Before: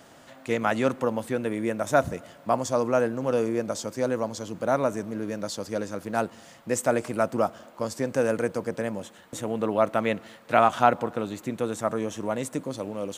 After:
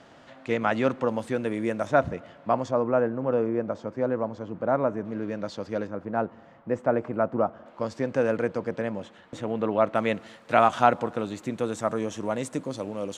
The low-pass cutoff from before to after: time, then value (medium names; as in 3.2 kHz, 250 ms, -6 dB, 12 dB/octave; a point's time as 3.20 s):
4.3 kHz
from 1.08 s 7.2 kHz
from 1.87 s 3.1 kHz
from 2.71 s 1.6 kHz
from 5.05 s 3.1 kHz
from 5.87 s 1.4 kHz
from 7.66 s 3.6 kHz
from 9.95 s 8.3 kHz